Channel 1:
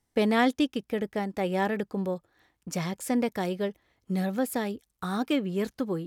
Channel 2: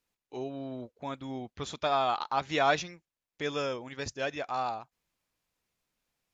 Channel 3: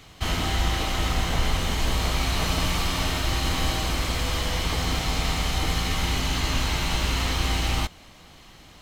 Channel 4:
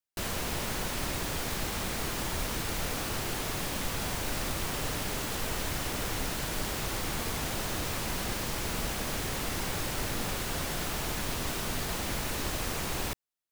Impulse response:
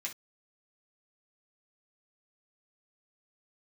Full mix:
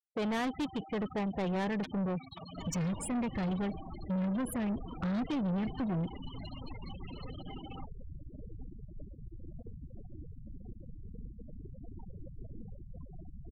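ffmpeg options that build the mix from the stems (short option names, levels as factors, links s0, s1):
-filter_complex "[0:a]asubboost=boost=7:cutoff=160,alimiter=limit=0.112:level=0:latency=1:release=184,volume=1.26[s0];[1:a]acompressor=threshold=0.0282:ratio=12,acrusher=bits=3:mix=0:aa=0.000001,volume=1.33[s1];[2:a]highpass=150,highshelf=f=9000:g=5,volume=0.237[s2];[3:a]bandreject=f=4000:w=12,adelay=2400,volume=0.422[s3];[s0][s1][s2][s3]amix=inputs=4:normalize=0,afftfilt=real='re*gte(hypot(re,im),0.0316)':imag='im*gte(hypot(re,im),0.0316)':win_size=1024:overlap=0.75,asoftclip=type=tanh:threshold=0.0316"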